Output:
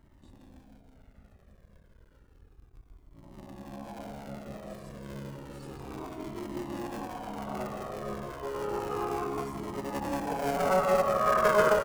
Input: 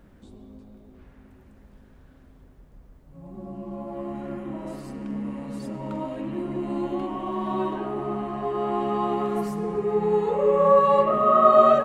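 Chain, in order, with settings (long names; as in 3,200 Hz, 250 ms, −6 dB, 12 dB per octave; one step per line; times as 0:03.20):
sub-harmonics by changed cycles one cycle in 3, muted
dynamic equaliser 3,700 Hz, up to −6 dB, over −51 dBFS, Q 3
on a send: single-tap delay 166 ms −7.5 dB
on the sum: flanger whose copies keep moving one way falling 0.31 Hz
level −2 dB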